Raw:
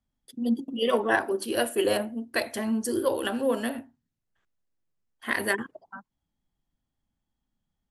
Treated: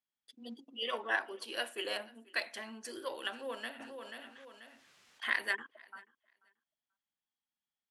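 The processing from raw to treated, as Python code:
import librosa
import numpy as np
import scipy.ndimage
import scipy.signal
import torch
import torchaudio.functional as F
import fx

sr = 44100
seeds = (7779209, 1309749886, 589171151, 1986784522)

y = scipy.signal.sosfilt(scipy.signal.butter(2, 2800.0, 'lowpass', fs=sr, output='sos'), x)
y = np.diff(y, prepend=0.0)
y = fx.echo_feedback(y, sr, ms=486, feedback_pct=17, wet_db=-24)
y = fx.env_flatten(y, sr, amount_pct=50, at=(3.79, 5.35), fade=0.02)
y = y * 10.0 ** (7.0 / 20.0)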